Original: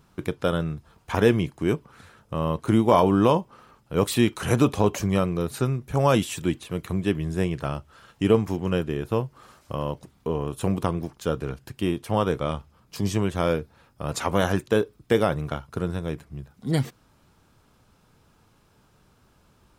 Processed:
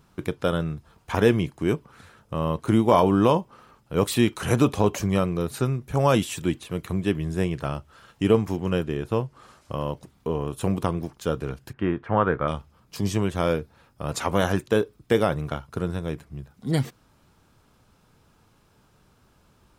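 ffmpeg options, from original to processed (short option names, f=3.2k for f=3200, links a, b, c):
-filter_complex "[0:a]asettb=1/sr,asplit=3[a][b][c];[a]atrim=end=8.864[d];[b]atrim=start=8.86:end=9.75,asetpts=PTS-STARTPTS,afade=t=in:d=0.004:c=qsin,afade=t=out:st=0.886:d=0.004:c=qsin,lowpass=11k[e];[c]atrim=start=9.746[f];[d][e]acrossfade=d=0.004:c1=hsin:c2=qsin[g];[g][f]acrossfade=d=0.004:c1=qsin:c2=hsin,asettb=1/sr,asplit=3[h][i][j];[h]atrim=end=11.734[k];[i]atrim=start=11.73:end=12.48,asetpts=PTS-STARTPTS,afade=t=in:d=0.004:c=qsin,afade=t=out:st=0.746:d=0.004:c=qsin,lowpass=f=1.6k:t=q:w=2.7[l];[j]atrim=start=12.476[m];[k][l]acrossfade=d=0.004:c1=hsin:c2=qsin[n];[n][m]acrossfade=d=0.004:c1=qsin:c2=hsin"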